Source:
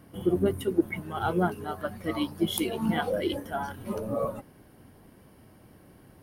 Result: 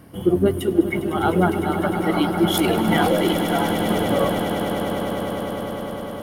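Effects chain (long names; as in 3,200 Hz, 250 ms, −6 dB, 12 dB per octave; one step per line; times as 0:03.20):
0:02.54–0:03.11: transient designer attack −6 dB, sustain +10 dB
on a send: echo that builds up and dies away 101 ms, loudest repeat 8, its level −12 dB
on the sum: level +7 dB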